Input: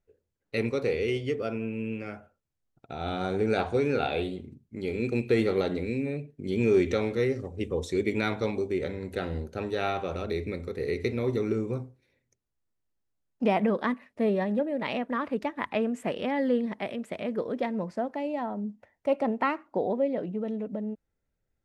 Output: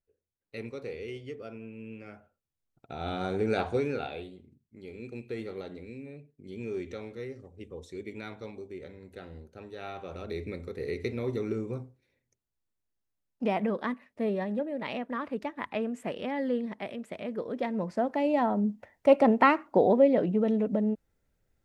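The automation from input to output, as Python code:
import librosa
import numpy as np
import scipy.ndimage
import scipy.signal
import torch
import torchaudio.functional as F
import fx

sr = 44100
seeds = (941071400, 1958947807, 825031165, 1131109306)

y = fx.gain(x, sr, db=fx.line((1.76, -11.0), (2.94, -2.0), (3.75, -2.0), (4.31, -13.0), (9.73, -13.0), (10.43, -4.0), (17.43, -4.0), (18.36, 6.0)))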